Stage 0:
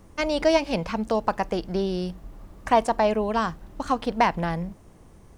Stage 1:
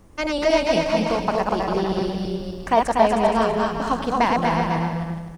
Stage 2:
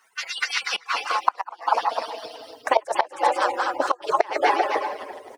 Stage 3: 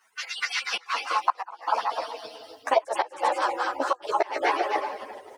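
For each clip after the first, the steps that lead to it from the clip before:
feedback delay that plays each chunk backwards 126 ms, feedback 42%, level −3 dB; on a send: bouncing-ball delay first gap 240 ms, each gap 0.65×, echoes 5
harmonic-percussive split with one part muted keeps percussive; gate with flip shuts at −13 dBFS, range −24 dB; high-pass filter sweep 1,500 Hz → 460 Hz, 0:00.52–0:03.07; level +5 dB
string-ensemble chorus

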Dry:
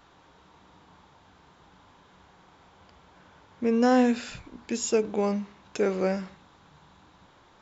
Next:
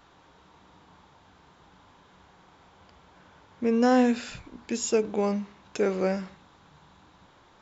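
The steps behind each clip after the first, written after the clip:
no processing that can be heard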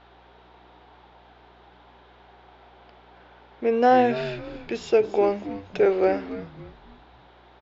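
loudspeaker in its box 380–4,100 Hz, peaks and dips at 380 Hz +7 dB, 730 Hz +6 dB, 1,100 Hz −5 dB
echo with shifted repeats 279 ms, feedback 37%, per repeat −110 Hz, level −13.5 dB
mains hum 60 Hz, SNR 32 dB
level +4 dB

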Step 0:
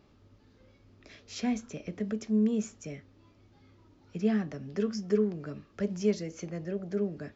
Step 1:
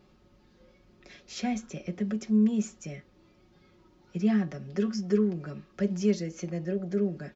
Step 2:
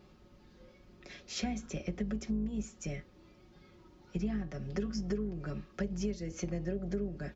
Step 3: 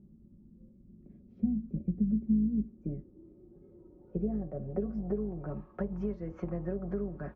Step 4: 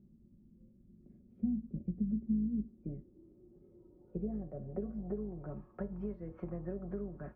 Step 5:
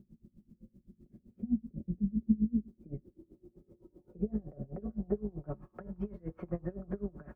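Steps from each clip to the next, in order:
comb filter 5.5 ms, depth 73%
sub-octave generator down 2 octaves, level −6 dB; downward compressor 12 to 1, threshold −32 dBFS, peak gain reduction 14.5 dB; level +1 dB
low-pass filter sweep 220 Hz → 1,100 Hz, 0:02.11–0:06.07
high-frequency loss of the air 300 metres; tuned comb filter 120 Hz, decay 0.34 s, harmonics all, mix 50%
tremolo with a sine in dB 7.8 Hz, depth 24 dB; level +8 dB

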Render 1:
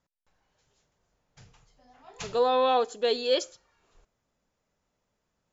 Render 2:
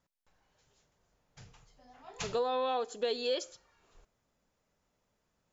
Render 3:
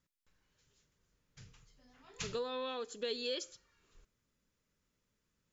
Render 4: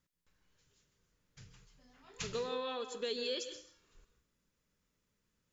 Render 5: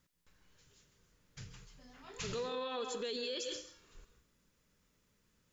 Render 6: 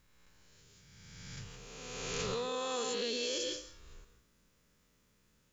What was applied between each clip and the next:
downward compressor 4 to 1, threshold −30 dBFS, peak gain reduction 9.5 dB
parametric band 740 Hz −14.5 dB 0.85 octaves; level −1.5 dB
convolution reverb RT60 0.50 s, pre-delay 130 ms, DRR 9 dB
brickwall limiter −37.5 dBFS, peak gain reduction 11 dB; level +6.5 dB
peak hold with a rise ahead of every peak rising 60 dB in 1.91 s

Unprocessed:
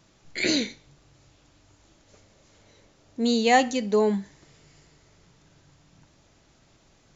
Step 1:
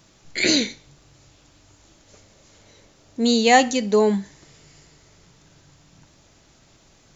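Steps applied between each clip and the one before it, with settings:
high-shelf EQ 4,700 Hz +5.5 dB
level +4 dB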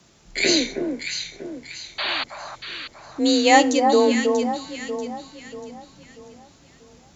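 frequency shifter +31 Hz
sound drawn into the spectrogram noise, 0:01.98–0:02.24, 540–4,700 Hz −25 dBFS
delay that swaps between a low-pass and a high-pass 319 ms, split 1,300 Hz, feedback 63%, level −4 dB

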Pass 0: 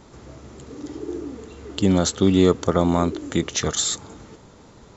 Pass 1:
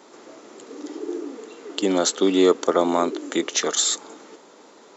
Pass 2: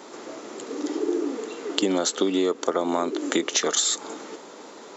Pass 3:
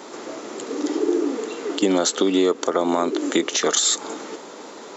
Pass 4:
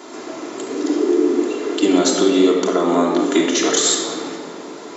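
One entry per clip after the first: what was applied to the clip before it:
high-pass filter 290 Hz 24 dB per octave; level +2 dB
downward compressor 12 to 1, threshold −25 dBFS, peak gain reduction 14 dB; level +6 dB
boost into a limiter +11.5 dB; level −7 dB
rectangular room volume 3,100 cubic metres, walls mixed, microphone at 3.1 metres; level −1 dB

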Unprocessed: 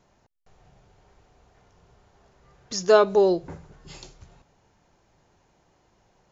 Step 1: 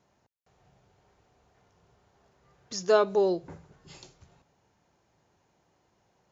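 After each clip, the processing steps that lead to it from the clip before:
high-pass filter 71 Hz
level −5.5 dB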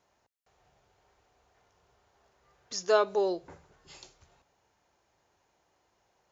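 parametric band 160 Hz −11 dB 2 octaves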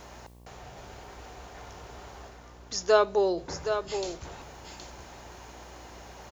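reversed playback
upward compression, threshold −33 dBFS
reversed playback
hum with harmonics 60 Hz, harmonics 19, −55 dBFS −6 dB per octave
single-tap delay 770 ms −8 dB
level +3 dB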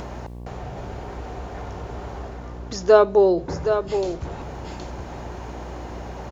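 high-pass filter 150 Hz 6 dB per octave
spectral tilt −3.5 dB per octave
in parallel at −1.5 dB: upward compression, threshold −27 dBFS

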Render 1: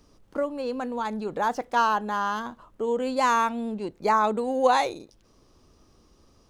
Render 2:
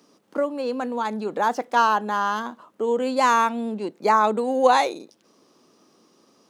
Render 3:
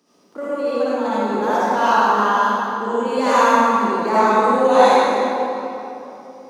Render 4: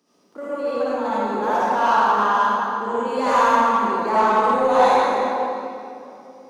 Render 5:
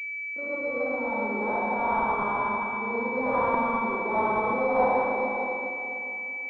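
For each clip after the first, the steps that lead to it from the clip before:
high-pass filter 190 Hz 24 dB per octave; level +3.5 dB
convolution reverb RT60 3.1 s, pre-delay 51 ms, DRR −12 dB; level −6.5 dB
dynamic equaliser 1,000 Hz, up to +5 dB, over −26 dBFS, Q 0.79; in parallel at −4 dB: soft clipping −13 dBFS, distortion −9 dB; on the sum: level −8.5 dB
downward expander −39 dBFS; spring reverb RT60 3.9 s, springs 47 ms, chirp 30 ms, DRR 10.5 dB; switching amplifier with a slow clock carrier 2,300 Hz; level −6.5 dB

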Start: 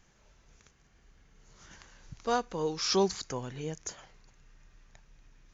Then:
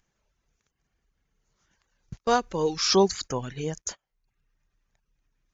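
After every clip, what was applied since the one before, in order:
in parallel at +1.5 dB: upward compression, threshold −35 dBFS
on the sum: noise gate −35 dBFS, range −28 dB
reverb reduction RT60 0.58 s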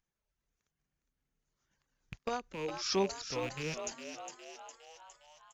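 loose part that buzzes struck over −37 dBFS, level −21 dBFS
sample-and-hold tremolo
echo with shifted repeats 409 ms, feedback 57%, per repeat +110 Hz, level −8 dB
level −8.5 dB

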